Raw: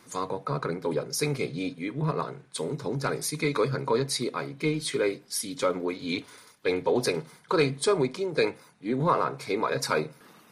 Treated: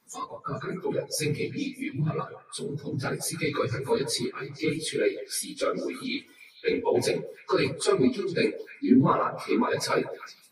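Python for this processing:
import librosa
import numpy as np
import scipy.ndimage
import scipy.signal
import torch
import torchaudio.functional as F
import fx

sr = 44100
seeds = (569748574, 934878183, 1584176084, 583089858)

y = fx.phase_scramble(x, sr, seeds[0], window_ms=50)
y = fx.noise_reduce_blind(y, sr, reduce_db=14)
y = fx.peak_eq(y, sr, hz=250.0, db=14.0, octaves=0.43, at=(8.0, 10.02))
y = fx.echo_stepped(y, sr, ms=153, hz=650.0, octaves=1.4, feedback_pct=70, wet_db=-9.0)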